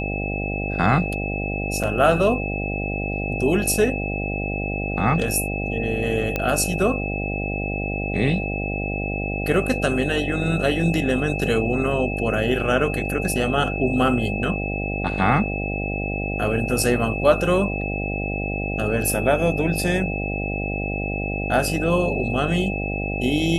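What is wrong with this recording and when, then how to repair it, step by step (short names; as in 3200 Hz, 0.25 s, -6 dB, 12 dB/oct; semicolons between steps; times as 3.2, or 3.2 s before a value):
buzz 50 Hz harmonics 16 -27 dBFS
tone 2600 Hz -29 dBFS
1.83–1.84 gap 6.2 ms
6.36 pop -9 dBFS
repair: de-click; notch 2600 Hz, Q 30; de-hum 50 Hz, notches 16; interpolate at 1.83, 6.2 ms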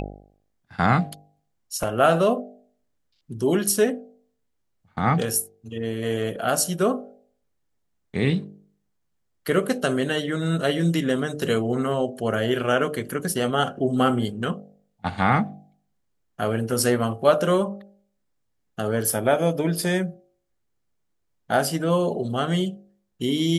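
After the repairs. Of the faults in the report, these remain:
none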